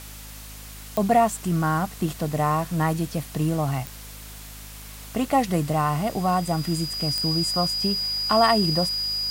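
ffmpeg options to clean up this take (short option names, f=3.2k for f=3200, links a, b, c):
-af "adeclick=t=4,bandreject=f=52.1:t=h:w=4,bandreject=f=104.2:t=h:w=4,bandreject=f=156.3:t=h:w=4,bandreject=f=208.4:t=h:w=4,bandreject=f=260.5:t=h:w=4,bandreject=f=4.9k:w=30,afftdn=nr=29:nf=-40"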